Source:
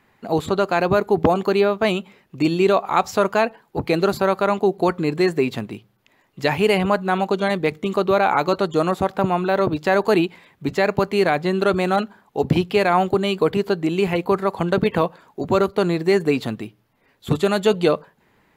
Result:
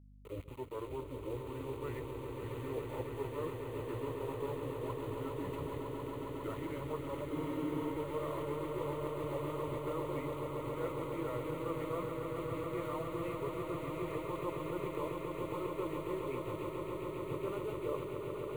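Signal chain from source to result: gliding pitch shift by -8 st ending unshifted; LPF 2000 Hz 24 dB/oct; reverse; compressor 6:1, threshold -33 dBFS, peak gain reduction 19 dB; reverse; sample gate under -42.5 dBFS; fixed phaser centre 1100 Hz, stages 8; hum 50 Hz, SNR 14 dB; swelling echo 0.137 s, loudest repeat 8, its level -8 dB; spectral freeze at 7.33, 0.61 s; gain -4 dB

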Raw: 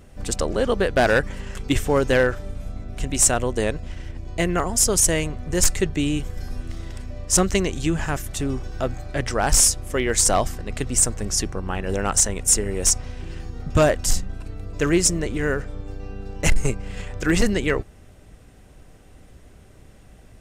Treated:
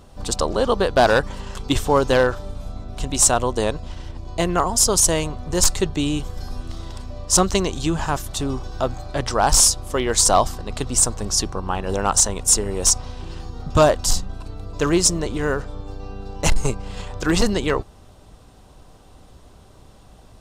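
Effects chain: graphic EQ 1000/2000/4000 Hz +10/-8/+8 dB

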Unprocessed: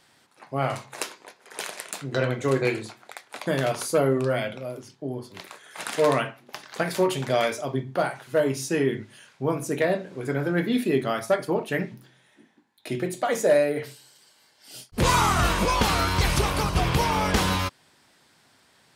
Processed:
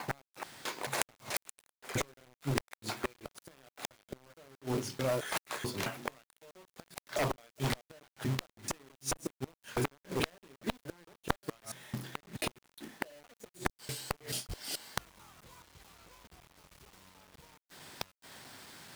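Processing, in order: slices in reverse order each 0.217 s, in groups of 3; in parallel at +3 dB: compressor 8:1, threshold -34 dBFS, peak gain reduction 18.5 dB; on the sum: flipped gate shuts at -15 dBFS, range -40 dB; added harmonics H 3 -40 dB, 4 -26 dB, 5 -15 dB, 7 -7 dB, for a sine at -6.5 dBFS; companded quantiser 4-bit; gain -2.5 dB

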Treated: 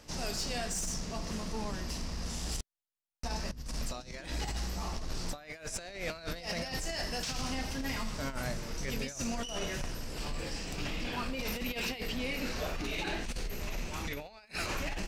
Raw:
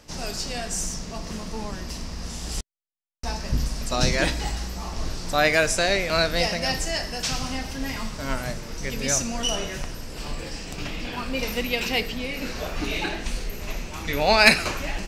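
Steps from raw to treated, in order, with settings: negative-ratio compressor -28 dBFS, ratio -0.5; soft clip -21 dBFS, distortion -19 dB; gain -6 dB

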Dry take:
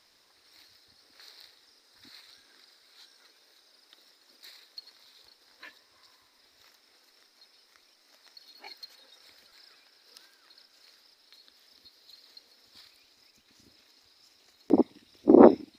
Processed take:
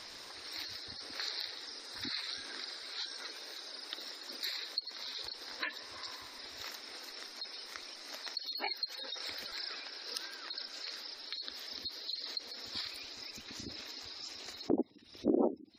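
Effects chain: spectral gate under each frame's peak -20 dB strong; compressor 4:1, threshold -50 dBFS, peak gain reduction 32.5 dB; gain +15.5 dB

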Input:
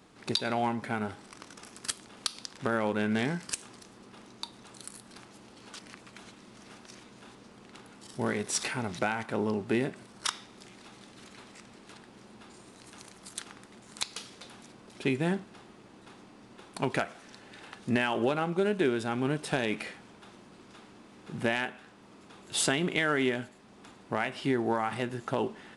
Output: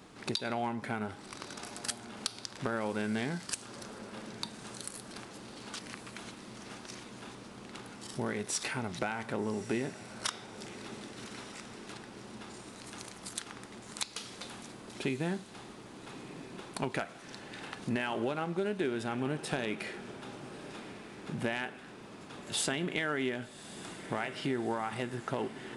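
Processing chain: compressor 2:1, threshold -41 dBFS, peak gain reduction 10.5 dB; on a send: diffused feedback echo 1.198 s, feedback 49%, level -14 dB; on the sum: gain +4 dB

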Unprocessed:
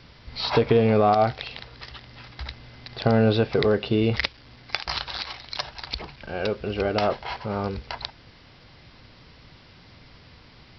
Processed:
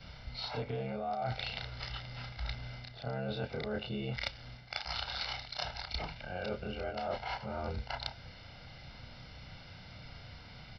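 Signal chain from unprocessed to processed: short-time reversal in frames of 66 ms; comb 1.4 ms, depth 57%; reverse; compressor 10:1, threshold -35 dBFS, peak gain reduction 20.5 dB; reverse; gain +1 dB

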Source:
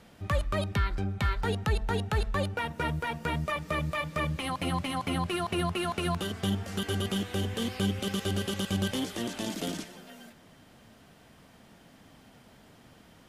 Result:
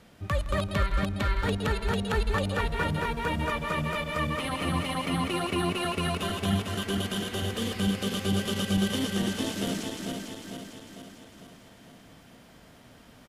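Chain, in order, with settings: regenerating reverse delay 0.225 s, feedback 72%, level -3.5 dB; bell 820 Hz -3 dB 0.25 oct; on a send: echo 0.163 s -17.5 dB

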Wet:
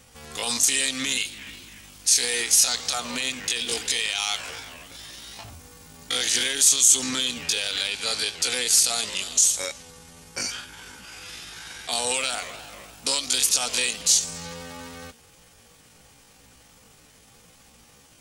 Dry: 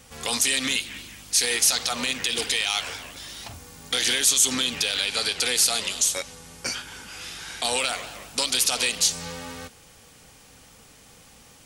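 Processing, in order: dynamic EQ 7100 Hz, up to +6 dB, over -35 dBFS, Q 1.5; tempo 0.64×; gain -2 dB

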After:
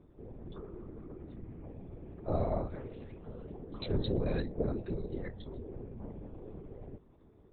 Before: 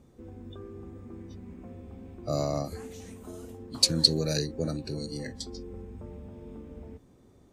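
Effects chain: whisperiser; LPC vocoder at 8 kHz whisper; high shelf 2300 Hz -9 dB; gain -2 dB

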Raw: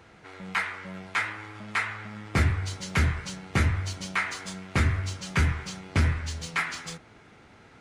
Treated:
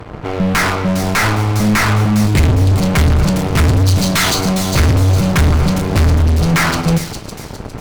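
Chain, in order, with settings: Wiener smoothing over 25 samples; 2.27–2.72 elliptic band-stop 420–1900 Hz; 3.79–4.41 band shelf 5400 Hz +16 dB; fuzz box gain 45 dB, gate -55 dBFS; low shelf 120 Hz +8.5 dB; thin delay 0.407 s, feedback 38%, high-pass 4100 Hz, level -4.5 dB; reverb RT60 0.40 s, pre-delay 7 ms, DRR 11.5 dB

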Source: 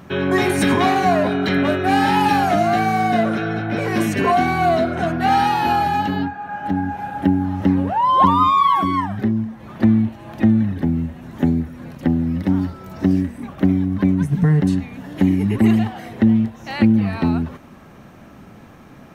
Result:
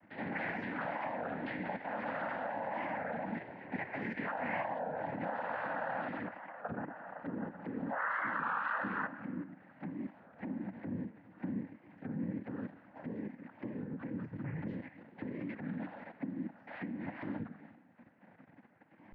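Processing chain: low shelf 230 Hz -5.5 dB; fixed phaser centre 390 Hz, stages 6; resonator 130 Hz, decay 1.3 s, harmonics all, mix 80%; limiter -26.5 dBFS, peak gain reduction 8 dB; level quantiser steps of 10 dB; resonator 250 Hz, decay 1.2 s, mix 50%; noise vocoder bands 8; ladder low-pass 2100 Hz, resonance 70%; record warp 33 1/3 rpm, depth 160 cents; gain +18 dB

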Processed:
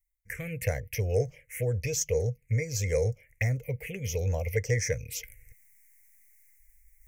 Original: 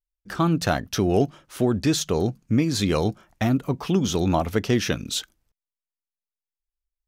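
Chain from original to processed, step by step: EQ curve 120 Hz 0 dB, 180 Hz -19 dB, 340 Hz -29 dB, 480 Hz +4 dB, 690 Hz -15 dB, 1300 Hz -24 dB, 2100 Hz +14 dB, 3700 Hz -26 dB, 5800 Hz +1 dB, 13000 Hz +5 dB; reverse; upward compressor, threshold -35 dBFS; reverse; envelope phaser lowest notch 550 Hz, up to 2800 Hz, full sweep at -22.5 dBFS

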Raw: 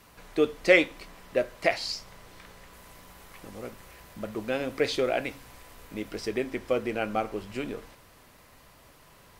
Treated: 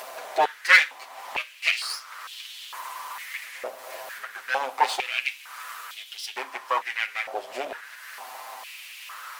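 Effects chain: minimum comb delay 7.7 ms; upward compressor, threshold -34 dBFS; stepped high-pass 2.2 Hz 640–3200 Hz; gain +3 dB

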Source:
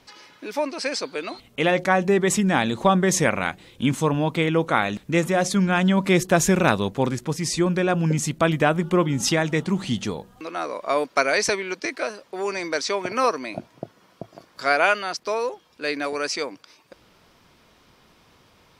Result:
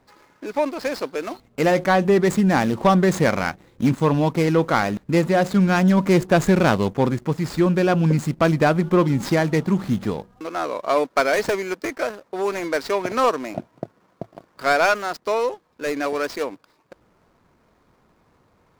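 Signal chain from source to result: median filter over 15 samples; sample leveller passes 1

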